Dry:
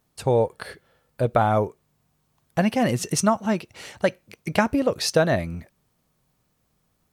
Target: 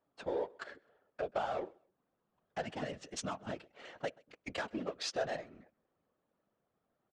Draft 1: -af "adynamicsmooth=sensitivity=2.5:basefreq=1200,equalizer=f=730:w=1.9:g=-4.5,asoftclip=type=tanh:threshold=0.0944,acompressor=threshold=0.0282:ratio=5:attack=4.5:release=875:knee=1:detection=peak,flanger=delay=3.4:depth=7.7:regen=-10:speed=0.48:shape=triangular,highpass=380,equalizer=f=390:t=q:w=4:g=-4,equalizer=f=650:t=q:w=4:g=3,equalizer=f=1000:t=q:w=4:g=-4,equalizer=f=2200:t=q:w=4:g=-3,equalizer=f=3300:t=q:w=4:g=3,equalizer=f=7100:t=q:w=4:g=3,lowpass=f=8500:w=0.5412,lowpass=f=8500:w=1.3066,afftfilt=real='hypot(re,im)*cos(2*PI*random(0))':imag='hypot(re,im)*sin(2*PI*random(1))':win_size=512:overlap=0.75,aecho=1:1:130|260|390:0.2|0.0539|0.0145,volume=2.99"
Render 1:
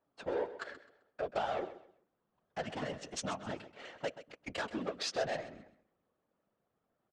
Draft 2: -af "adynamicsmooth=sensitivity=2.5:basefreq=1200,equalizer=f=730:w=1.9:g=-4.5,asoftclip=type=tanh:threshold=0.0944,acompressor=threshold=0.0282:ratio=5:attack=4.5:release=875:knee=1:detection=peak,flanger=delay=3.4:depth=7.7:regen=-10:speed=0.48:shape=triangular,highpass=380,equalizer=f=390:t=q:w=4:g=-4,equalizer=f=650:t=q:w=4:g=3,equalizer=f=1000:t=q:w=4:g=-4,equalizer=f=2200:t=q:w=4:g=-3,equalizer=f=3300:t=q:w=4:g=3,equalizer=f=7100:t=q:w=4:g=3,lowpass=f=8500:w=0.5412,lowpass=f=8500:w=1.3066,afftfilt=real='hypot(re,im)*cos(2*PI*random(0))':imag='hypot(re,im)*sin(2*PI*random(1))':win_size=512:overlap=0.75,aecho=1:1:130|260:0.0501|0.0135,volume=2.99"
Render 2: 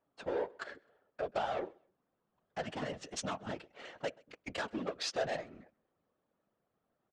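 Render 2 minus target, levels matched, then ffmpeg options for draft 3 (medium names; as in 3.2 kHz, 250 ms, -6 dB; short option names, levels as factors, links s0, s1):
saturation: distortion +8 dB
-af "adynamicsmooth=sensitivity=2.5:basefreq=1200,equalizer=f=730:w=1.9:g=-4.5,asoftclip=type=tanh:threshold=0.224,acompressor=threshold=0.0282:ratio=5:attack=4.5:release=875:knee=1:detection=peak,flanger=delay=3.4:depth=7.7:regen=-10:speed=0.48:shape=triangular,highpass=380,equalizer=f=390:t=q:w=4:g=-4,equalizer=f=650:t=q:w=4:g=3,equalizer=f=1000:t=q:w=4:g=-4,equalizer=f=2200:t=q:w=4:g=-3,equalizer=f=3300:t=q:w=4:g=3,equalizer=f=7100:t=q:w=4:g=3,lowpass=f=8500:w=0.5412,lowpass=f=8500:w=1.3066,afftfilt=real='hypot(re,im)*cos(2*PI*random(0))':imag='hypot(re,im)*sin(2*PI*random(1))':win_size=512:overlap=0.75,aecho=1:1:130|260:0.0501|0.0135,volume=2.99"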